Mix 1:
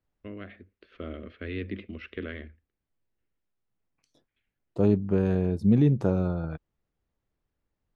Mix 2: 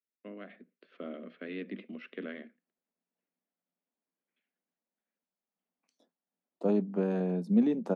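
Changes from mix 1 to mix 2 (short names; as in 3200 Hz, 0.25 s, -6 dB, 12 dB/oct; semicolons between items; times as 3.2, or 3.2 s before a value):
second voice: entry +1.85 s; master: add rippled Chebyshev high-pass 170 Hz, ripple 6 dB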